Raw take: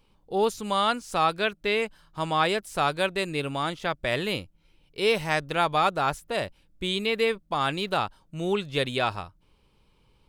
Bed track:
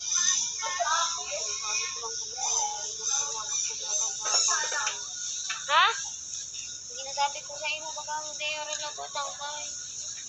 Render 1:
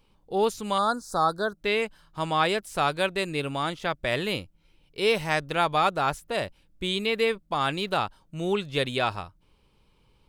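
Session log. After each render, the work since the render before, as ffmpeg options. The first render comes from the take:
-filter_complex "[0:a]asettb=1/sr,asplit=3[s0][s1][s2];[s0]atrim=end=0.784[s3];[s1]atrim=start=0.78:end=1.58,asetpts=PTS-STARTPTS,afade=t=in:d=0.004:c=qsin,afade=t=out:st=0.796:d=0.004:c=qsin,asuperstop=centerf=2500:order=8:qfactor=1.1[s4];[s2]atrim=start=1.576[s5];[s3][s4]acrossfade=d=0.004:c1=hsin:c2=qsin[s6];[s6][s5]acrossfade=d=0.004:c1=qsin:c2=hsin"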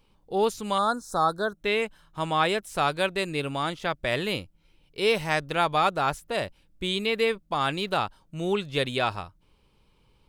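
-filter_complex "[0:a]asettb=1/sr,asplit=3[s0][s1][s2];[s0]atrim=end=0.754[s3];[s1]atrim=start=0.75:end=2.69,asetpts=PTS-STARTPTS,afade=t=in:d=0.004:c=qsin,afade=t=out:st=1.936:d=0.004:c=qsin,bandreject=f=4700:w=7.3[s4];[s2]atrim=start=2.686[s5];[s3][s4]acrossfade=d=0.004:c1=hsin:c2=qsin[s6];[s6][s5]acrossfade=d=0.004:c1=qsin:c2=hsin"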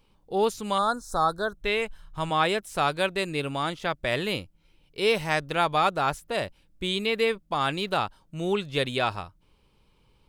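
-filter_complex "[0:a]asplit=3[s0][s1][s2];[s0]afade=t=out:st=0.81:d=0.02[s3];[s1]asubboost=boost=8.5:cutoff=94,afade=t=in:st=0.81:d=0.02,afade=t=out:st=2.29:d=0.02[s4];[s2]afade=t=in:st=2.29:d=0.02[s5];[s3][s4][s5]amix=inputs=3:normalize=0"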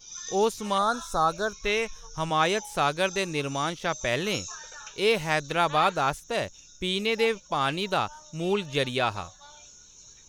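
-filter_complex "[1:a]volume=0.2[s0];[0:a][s0]amix=inputs=2:normalize=0"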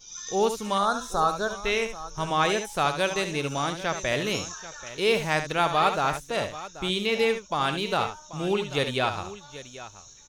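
-af "aecho=1:1:71|785:0.355|0.168"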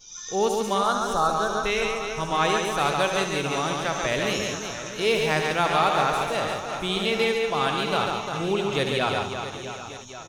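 -af "aecho=1:1:140|350|665|1138|1846:0.631|0.398|0.251|0.158|0.1"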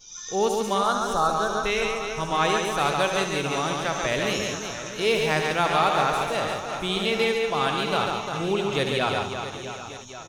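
-af anull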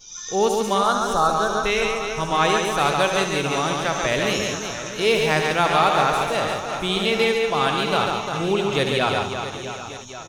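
-af "volume=1.5"

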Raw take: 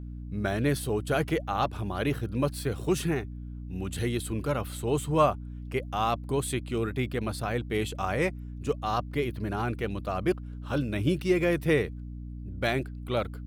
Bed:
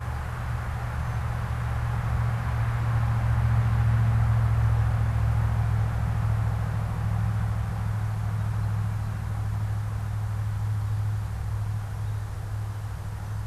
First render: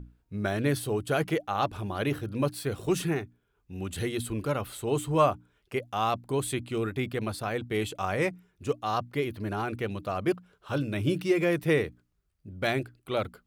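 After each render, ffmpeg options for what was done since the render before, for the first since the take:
-af "bandreject=f=60:t=h:w=6,bandreject=f=120:t=h:w=6,bandreject=f=180:t=h:w=6,bandreject=f=240:t=h:w=6,bandreject=f=300:t=h:w=6"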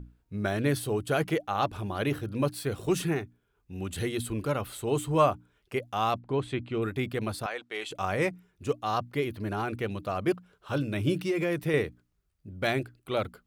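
-filter_complex "[0:a]asplit=3[s0][s1][s2];[s0]afade=t=out:st=6.18:d=0.02[s3];[s1]lowpass=3100,afade=t=in:st=6.18:d=0.02,afade=t=out:st=6.81:d=0.02[s4];[s2]afade=t=in:st=6.81:d=0.02[s5];[s3][s4][s5]amix=inputs=3:normalize=0,asettb=1/sr,asplit=3[s6][s7][s8];[s6]atrim=end=7.464[s9];[s7]atrim=start=7.46:end=7.91,asetpts=PTS-STARTPTS,afade=t=in:d=0.004:c=qsin,afade=t=out:st=0.446:d=0.004:c=qsin,highpass=660,lowpass=7200[s10];[s8]atrim=start=7.906[s11];[s9][s10]acrossfade=d=0.004:c1=hsin:c2=qsin[s12];[s12][s11]acrossfade=d=0.004:c1=qsin:c2=hsin,asettb=1/sr,asplit=3[s13][s14][s15];[s13]atrim=end=11.244[s16];[s14]atrim=start=11.24:end=11.74,asetpts=PTS-STARTPTS,afade=t=in:d=0.004:c=qsin,afade=t=out:st=0.496:d=0.004:c=qsin,acompressor=threshold=0.0631:ratio=4:attack=3.2:release=140:knee=1:detection=peak[s17];[s15]atrim=start=11.736[s18];[s16][s17]acrossfade=d=0.004:c1=hsin:c2=qsin[s19];[s19][s18]acrossfade=d=0.004:c1=qsin:c2=hsin"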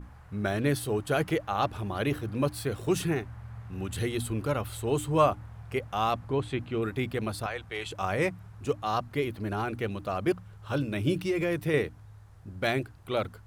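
-filter_complex "[1:a]volume=0.1[s0];[0:a][s0]amix=inputs=2:normalize=0"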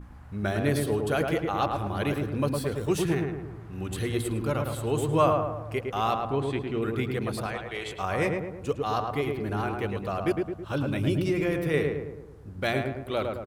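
-filter_complex "[0:a]asplit=2[s0][s1];[s1]adelay=108,lowpass=f=1600:p=1,volume=0.708,asplit=2[s2][s3];[s3]adelay=108,lowpass=f=1600:p=1,volume=0.54,asplit=2[s4][s5];[s5]adelay=108,lowpass=f=1600:p=1,volume=0.54,asplit=2[s6][s7];[s7]adelay=108,lowpass=f=1600:p=1,volume=0.54,asplit=2[s8][s9];[s9]adelay=108,lowpass=f=1600:p=1,volume=0.54,asplit=2[s10][s11];[s11]adelay=108,lowpass=f=1600:p=1,volume=0.54,asplit=2[s12][s13];[s13]adelay=108,lowpass=f=1600:p=1,volume=0.54[s14];[s0][s2][s4][s6][s8][s10][s12][s14]amix=inputs=8:normalize=0"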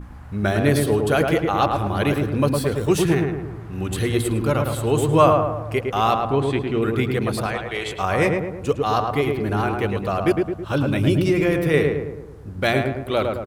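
-af "volume=2.37"

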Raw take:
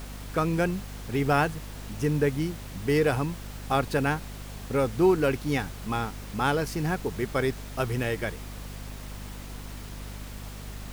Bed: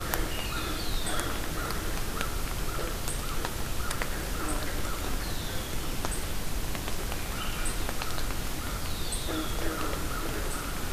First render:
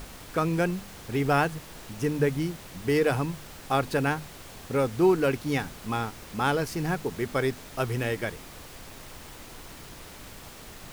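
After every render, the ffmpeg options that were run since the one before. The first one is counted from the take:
-af "bandreject=f=50:t=h:w=4,bandreject=f=100:t=h:w=4,bandreject=f=150:t=h:w=4,bandreject=f=200:t=h:w=4,bandreject=f=250:t=h:w=4"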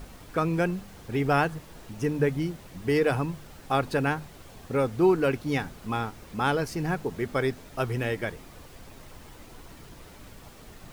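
-af "afftdn=nr=7:nf=-45"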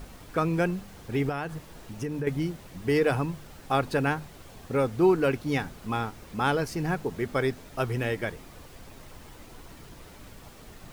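-filter_complex "[0:a]asettb=1/sr,asplit=3[s0][s1][s2];[s0]atrim=end=1.294[s3];[s1]atrim=start=1.29:end=2.27,asetpts=PTS-STARTPTS,afade=t=in:d=0.004:c=qsin,afade=t=out:st=0.976:d=0.004:c=qsin,acompressor=threshold=0.0398:ratio=5:attack=3.2:release=140:knee=1:detection=peak[s4];[s2]atrim=start=2.266[s5];[s3][s4]acrossfade=d=0.004:c1=hsin:c2=qsin[s6];[s6][s5]acrossfade=d=0.004:c1=qsin:c2=hsin"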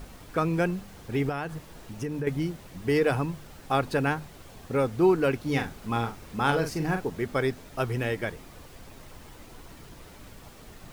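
-filter_complex "[0:a]asettb=1/sr,asplit=3[s0][s1][s2];[s0]atrim=end=5.404[s3];[s1]atrim=start=5.4:end=7.1,asetpts=PTS-STARTPTS,afade=t=in:d=0.004:c=qsin,afade=t=out:st=1.696:d=0.004:c=qsin,asplit=2[s4][s5];[s5]adelay=43,volume=0.447[s6];[s4][s6]amix=inputs=2:normalize=0,atrim=end_sample=74970[s7];[s2]atrim=start=7.096[s8];[s3][s7]acrossfade=d=0.004:c1=hsin:c2=qsin[s9];[s9][s8]acrossfade=d=0.004:c1=qsin:c2=hsin"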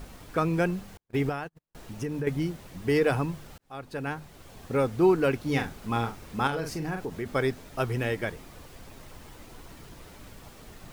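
-filter_complex "[0:a]asettb=1/sr,asplit=3[s0][s1][s2];[s0]atrim=end=0.974[s3];[s1]atrim=start=0.97:end=1.75,asetpts=PTS-STARTPTS,afade=t=in:d=0.004:c=qsin,afade=t=out:st=0.776:d=0.004:c=qsin,agate=range=0.00501:threshold=0.0224:ratio=16:release=100:detection=peak[s4];[s2]atrim=start=1.746[s5];[s3][s4]acrossfade=d=0.004:c1=hsin:c2=qsin[s6];[s6][s5]acrossfade=d=0.004:c1=qsin:c2=hsin,asettb=1/sr,asplit=3[s7][s8][s9];[s7]atrim=end=6.474[s10];[s8]atrim=start=6.47:end=7.26,asetpts=PTS-STARTPTS,afade=t=in:d=0.004:c=qsin,afade=t=out:st=0.786:d=0.004:c=qsin,acompressor=threshold=0.0282:ratio=2:attack=3.2:release=140:knee=1:detection=peak[s11];[s9]atrim=start=7.256[s12];[s10][s11]acrossfade=d=0.004:c1=hsin:c2=qsin[s13];[s13][s12]acrossfade=d=0.004:c1=qsin:c2=hsin,asplit=2[s14][s15];[s14]atrim=end=3.58,asetpts=PTS-STARTPTS,afade=t=out:st=3.576:d=0.004:c=hsin[s16];[s15]atrim=start=3.58,asetpts=PTS-STARTPTS,afade=t=in:d=1.06[s17];[s16][s17]concat=n=2:v=0:a=1"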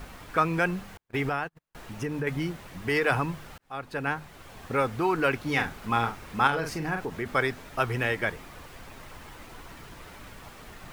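-filter_complex "[0:a]acrossover=split=840|2800[s0][s1][s2];[s0]alimiter=limit=0.0668:level=0:latency=1[s3];[s1]acontrast=90[s4];[s3][s4][s2]amix=inputs=3:normalize=0"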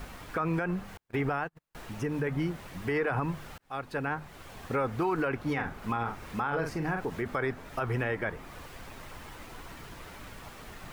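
-filter_complex "[0:a]acrossover=split=2000[s0][s1];[s1]acompressor=threshold=0.00398:ratio=4[s2];[s0][s2]amix=inputs=2:normalize=0,alimiter=limit=0.0944:level=0:latency=1:release=50"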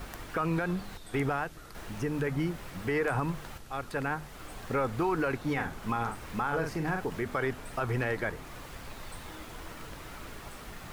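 -filter_complex "[1:a]volume=0.141[s0];[0:a][s0]amix=inputs=2:normalize=0"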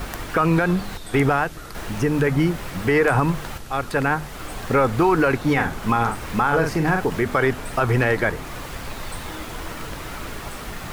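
-af "volume=3.76"

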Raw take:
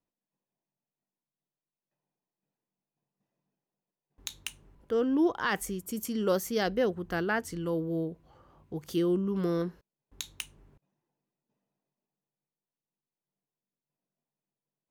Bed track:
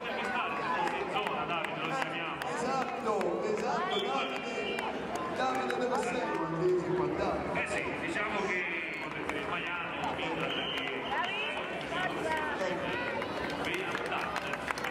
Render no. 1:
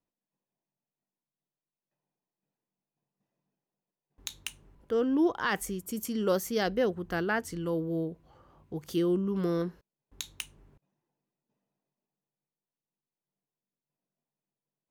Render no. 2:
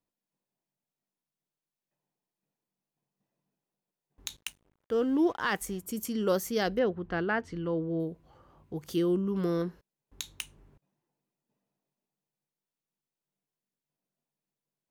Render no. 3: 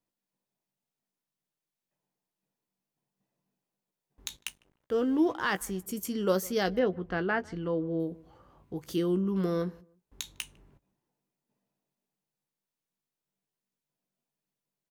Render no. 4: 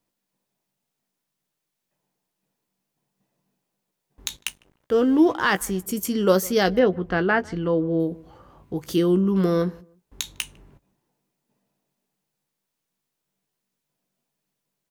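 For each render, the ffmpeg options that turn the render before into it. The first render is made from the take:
-af anull
-filter_complex "[0:a]asettb=1/sr,asplit=3[s0][s1][s2];[s0]atrim=end=4.364[s3];[s1]atrim=start=4.36:end=5.81,asetpts=PTS-STARTPTS,afade=t=in:d=0.004:c=qsin,afade=t=out:st=1.446:d=0.004:c=qsin,aeval=exprs='sgn(val(0))*max(abs(val(0))-0.00188,0)':c=same[s4];[s2]atrim=start=5.806[s5];[s3][s4]acrossfade=d=0.004:c1=hsin:c2=qsin[s6];[s6][s5]acrossfade=d=0.004:c1=qsin:c2=hsin,asettb=1/sr,asplit=3[s7][s8][s9];[s7]atrim=end=6.794[s10];[s8]atrim=start=6.79:end=8,asetpts=PTS-STARTPTS,afade=t=in:d=0.004:c=qsin,afade=t=out:st=1.206:d=0.004:c=qsin,lowpass=3300[s11];[s9]atrim=start=7.996[s12];[s10][s11]acrossfade=d=0.004:c1=hsin:c2=qsin[s13];[s13][s12]acrossfade=d=0.004:c1=qsin:c2=hsin"
-filter_complex "[0:a]asplit=2[s0][s1];[s1]adelay=16,volume=0.282[s2];[s0][s2]amix=inputs=2:normalize=0,asplit=2[s3][s4];[s4]adelay=152,lowpass=f=1300:p=1,volume=0.0708,asplit=2[s5][s6];[s6]adelay=152,lowpass=f=1300:p=1,volume=0.26[s7];[s3][s5][s7]amix=inputs=3:normalize=0"
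-af "volume=2.66"

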